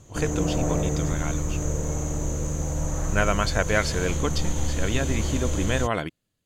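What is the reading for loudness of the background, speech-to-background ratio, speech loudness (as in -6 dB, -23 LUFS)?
-28.5 LUFS, 0.0 dB, -28.5 LUFS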